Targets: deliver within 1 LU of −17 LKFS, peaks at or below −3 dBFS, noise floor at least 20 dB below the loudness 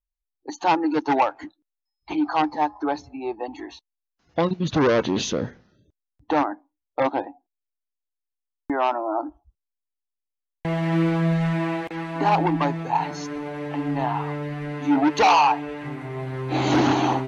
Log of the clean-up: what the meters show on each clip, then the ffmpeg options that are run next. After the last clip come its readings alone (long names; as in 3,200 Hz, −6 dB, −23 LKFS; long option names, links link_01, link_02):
integrated loudness −23.5 LKFS; sample peak −10.0 dBFS; target loudness −17.0 LKFS
→ -af "volume=6.5dB"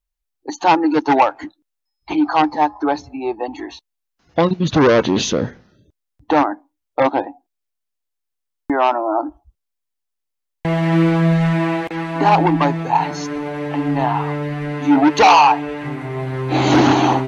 integrated loudness −17.0 LKFS; sample peak −3.5 dBFS; background noise floor −78 dBFS